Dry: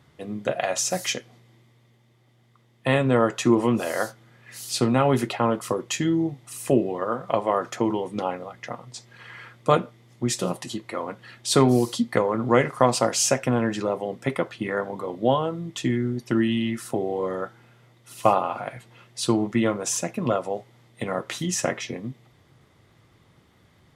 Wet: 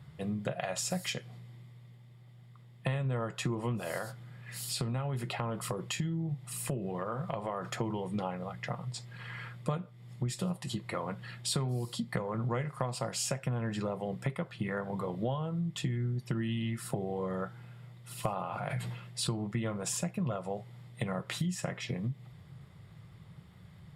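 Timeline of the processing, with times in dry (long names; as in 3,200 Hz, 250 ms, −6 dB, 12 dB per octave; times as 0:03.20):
0:03.98–0:07.67: downward compressor 2 to 1, threshold −29 dBFS
0:18.36–0:19.30: level that may fall only so fast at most 59 dB per second
whole clip: low shelf with overshoot 210 Hz +6.5 dB, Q 3; notch filter 6,100 Hz, Q 5.1; downward compressor 6 to 1, threshold −29 dBFS; level −2 dB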